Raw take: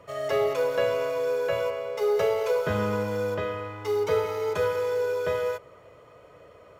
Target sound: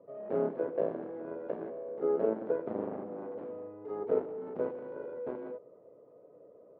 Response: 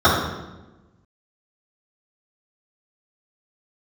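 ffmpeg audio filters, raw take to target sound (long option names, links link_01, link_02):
-af "aeval=exprs='0.237*(cos(1*acos(clip(val(0)/0.237,-1,1)))-cos(1*PI/2))+0.0473*(cos(3*acos(clip(val(0)/0.237,-1,1)))-cos(3*PI/2))+0.0211*(cos(4*acos(clip(val(0)/0.237,-1,1)))-cos(4*PI/2))+0.0188*(cos(5*acos(clip(val(0)/0.237,-1,1)))-cos(5*PI/2))+0.0531*(cos(7*acos(clip(val(0)/0.237,-1,1)))-cos(7*PI/2))':channel_layout=same,asuperpass=centerf=340:order=4:qfactor=0.9"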